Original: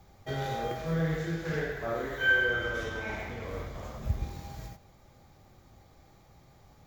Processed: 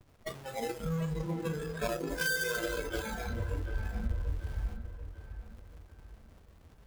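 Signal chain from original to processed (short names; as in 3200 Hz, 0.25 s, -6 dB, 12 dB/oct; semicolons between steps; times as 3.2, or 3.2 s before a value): half-waves squared off; gate with hold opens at -50 dBFS; in parallel at +3 dB: vocal rider within 3 dB 2 s; on the sum: limiter -18.5 dBFS, peak gain reduction 26 dB; compressor 12:1, threshold -30 dBFS, peak gain reduction 10.5 dB; added harmonics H 6 -23 dB, 7 -15 dB, 8 -9 dB, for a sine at -23 dBFS; spectral noise reduction 17 dB; on a send: dark delay 0.739 s, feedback 40%, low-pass 2100 Hz, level -10 dB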